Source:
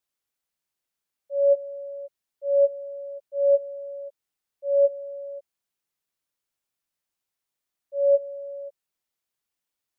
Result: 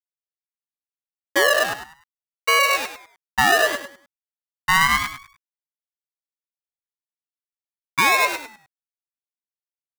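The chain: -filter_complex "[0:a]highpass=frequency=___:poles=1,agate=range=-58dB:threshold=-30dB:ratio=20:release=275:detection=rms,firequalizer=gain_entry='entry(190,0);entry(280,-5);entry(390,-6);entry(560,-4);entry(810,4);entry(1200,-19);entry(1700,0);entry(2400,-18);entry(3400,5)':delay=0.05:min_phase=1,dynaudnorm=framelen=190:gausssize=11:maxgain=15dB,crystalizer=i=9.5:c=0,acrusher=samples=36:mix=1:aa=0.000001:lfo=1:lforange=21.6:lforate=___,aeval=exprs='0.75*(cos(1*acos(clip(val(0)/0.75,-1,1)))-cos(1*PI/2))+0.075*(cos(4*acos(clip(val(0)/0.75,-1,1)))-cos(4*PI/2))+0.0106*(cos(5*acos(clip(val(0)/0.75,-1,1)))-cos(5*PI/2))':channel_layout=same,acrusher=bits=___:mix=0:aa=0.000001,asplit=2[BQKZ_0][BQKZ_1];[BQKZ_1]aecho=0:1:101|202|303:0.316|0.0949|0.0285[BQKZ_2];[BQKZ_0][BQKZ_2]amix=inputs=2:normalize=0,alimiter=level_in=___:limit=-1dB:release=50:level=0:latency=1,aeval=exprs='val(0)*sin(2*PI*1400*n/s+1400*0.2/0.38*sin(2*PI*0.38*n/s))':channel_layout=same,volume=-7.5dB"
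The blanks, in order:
620, 0.69, 4, 10dB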